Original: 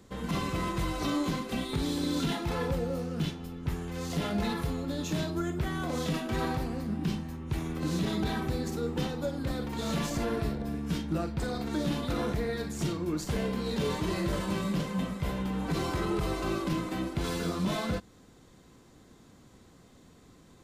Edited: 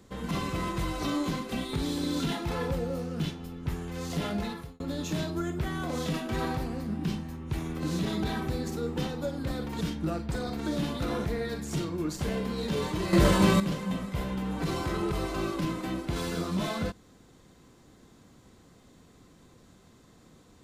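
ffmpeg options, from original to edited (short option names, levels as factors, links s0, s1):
-filter_complex "[0:a]asplit=5[s0][s1][s2][s3][s4];[s0]atrim=end=4.8,asetpts=PTS-STARTPTS,afade=t=out:st=4.3:d=0.5[s5];[s1]atrim=start=4.8:end=9.812,asetpts=PTS-STARTPTS,afade=t=in:d=0.004:c=hsin[s6];[s2]atrim=start=10.888:end=14.212[s7];[s3]atrim=start=14.208:end=14.682,asetpts=PTS-STARTPTS,volume=3.16[s8];[s4]atrim=start=14.678[s9];[s5][s6]concat=n=2:v=0:a=1[s10];[s10][s7]acrossfade=d=0.004:c1=hsin:c2=hsin[s11];[s11][s8]acrossfade=d=0.004:c1=hsin:c2=hsin[s12];[s12][s9]acrossfade=d=0.004:c1=hsin:c2=hsin"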